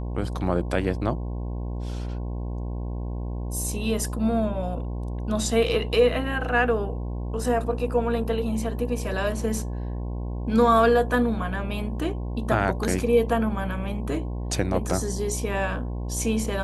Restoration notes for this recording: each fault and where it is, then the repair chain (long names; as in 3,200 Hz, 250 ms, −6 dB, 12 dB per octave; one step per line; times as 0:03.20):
mains buzz 60 Hz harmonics 18 −30 dBFS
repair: hum removal 60 Hz, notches 18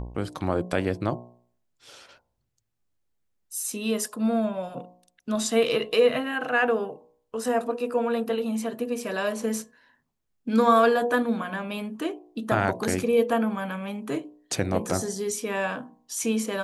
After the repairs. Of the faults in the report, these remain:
none of them is left